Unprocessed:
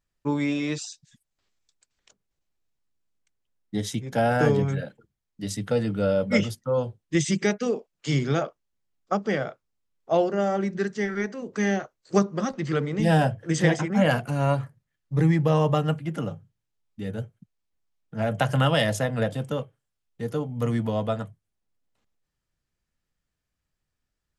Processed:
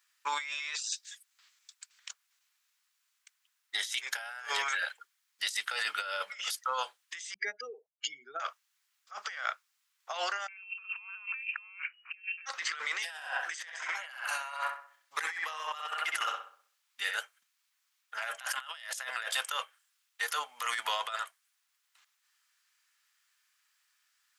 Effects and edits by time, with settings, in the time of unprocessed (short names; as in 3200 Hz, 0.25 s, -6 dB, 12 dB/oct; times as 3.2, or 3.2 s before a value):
7.34–8.4 spectral contrast raised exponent 2.6
10.48–12.46 inverted band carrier 2900 Hz
13.11–17.16 darkening echo 64 ms, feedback 42%, low-pass 2700 Hz, level -3.5 dB
whole clip: HPF 1200 Hz 24 dB/oct; negative-ratio compressor -45 dBFS, ratio -1; gain +5.5 dB